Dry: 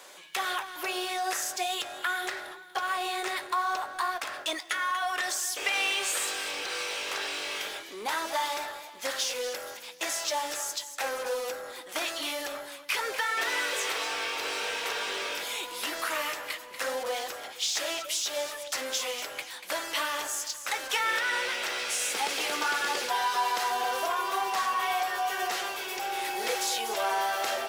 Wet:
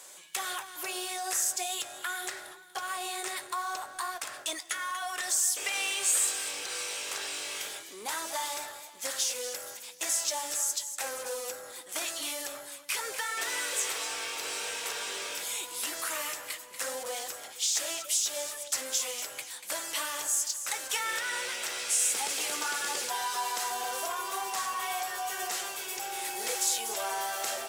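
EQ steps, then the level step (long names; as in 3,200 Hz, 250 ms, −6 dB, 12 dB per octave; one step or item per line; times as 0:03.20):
graphic EQ with 10 bands 125 Hz +5 dB, 8,000 Hz +10 dB, 16,000 Hz +8 dB
−6.0 dB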